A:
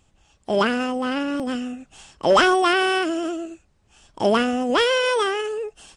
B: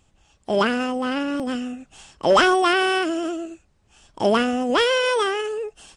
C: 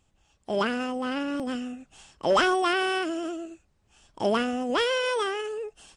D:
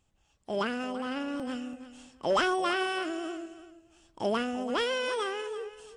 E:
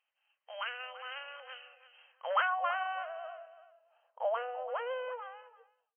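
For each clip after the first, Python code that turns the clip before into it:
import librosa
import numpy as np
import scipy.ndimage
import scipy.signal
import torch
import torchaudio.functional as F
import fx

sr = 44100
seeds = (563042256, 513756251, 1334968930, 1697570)

y1 = x
y2 = fx.rider(y1, sr, range_db=4, speed_s=2.0)
y2 = y2 * librosa.db_to_amplitude(-7.5)
y3 = fx.echo_feedback(y2, sr, ms=335, feedback_pct=20, wet_db=-14.0)
y3 = y3 * librosa.db_to_amplitude(-4.5)
y4 = fx.fade_out_tail(y3, sr, length_s=1.48)
y4 = fx.filter_sweep_bandpass(y4, sr, from_hz=2500.0, to_hz=690.0, start_s=1.96, end_s=2.88, q=1.0)
y4 = fx.brickwall_bandpass(y4, sr, low_hz=470.0, high_hz=3200.0)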